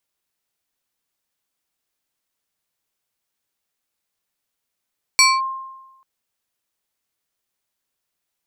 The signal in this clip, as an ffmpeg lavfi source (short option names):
-f lavfi -i "aevalsrc='0.422*pow(10,-3*t/1.1)*sin(2*PI*1060*t+2*clip(1-t/0.22,0,1)*sin(2*PI*3.19*1060*t))':d=0.84:s=44100"